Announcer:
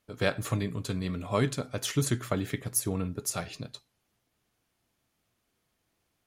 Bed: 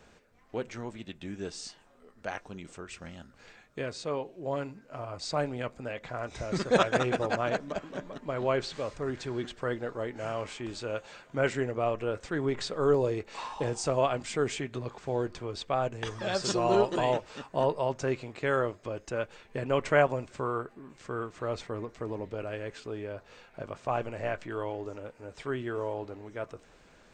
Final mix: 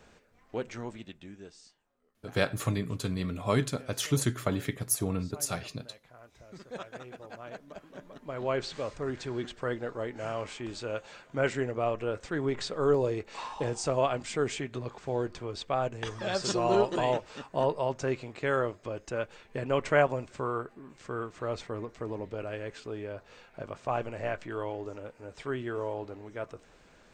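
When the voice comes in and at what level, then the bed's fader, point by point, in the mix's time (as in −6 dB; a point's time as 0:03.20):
2.15 s, 0.0 dB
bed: 0:00.92 0 dB
0:01.78 −17.5 dB
0:07.20 −17.5 dB
0:08.67 −0.5 dB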